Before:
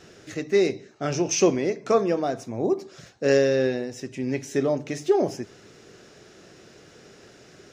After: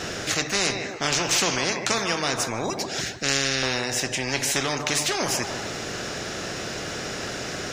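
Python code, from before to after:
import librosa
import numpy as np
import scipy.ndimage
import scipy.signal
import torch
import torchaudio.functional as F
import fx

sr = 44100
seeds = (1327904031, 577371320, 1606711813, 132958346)

p1 = fx.band_shelf(x, sr, hz=720.0, db=-14.5, octaves=1.7, at=(2.7, 3.63))
p2 = p1 + fx.echo_banded(p1, sr, ms=152, feedback_pct=42, hz=980.0, wet_db=-14.0, dry=0)
y = fx.spectral_comp(p2, sr, ratio=4.0)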